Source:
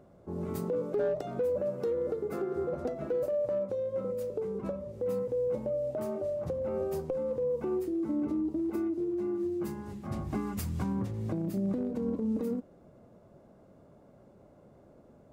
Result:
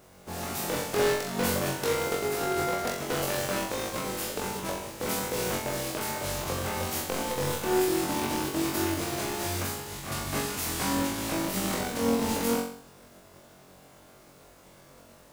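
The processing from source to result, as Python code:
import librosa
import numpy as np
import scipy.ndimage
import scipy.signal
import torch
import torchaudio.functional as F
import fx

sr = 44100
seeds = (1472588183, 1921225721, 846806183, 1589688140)

y = fx.spec_flatten(x, sr, power=0.44)
y = fx.room_flutter(y, sr, wall_m=3.7, rt60_s=0.54)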